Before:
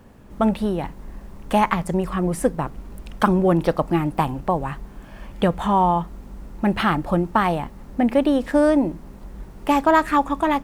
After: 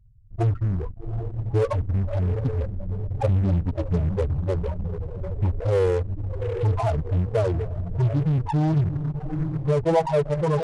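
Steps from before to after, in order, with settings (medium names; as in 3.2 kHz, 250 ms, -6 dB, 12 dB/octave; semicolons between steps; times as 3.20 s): graphic EQ 500/2000/4000/8000 Hz -11/+7/-4/-8 dB; echo that smears into a reverb 762 ms, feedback 44%, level -8 dB; loudest bins only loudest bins 8; in parallel at -10 dB: fuzz box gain 31 dB, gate -40 dBFS; on the sum: pitch shift -11.5 st; trim -3.5 dB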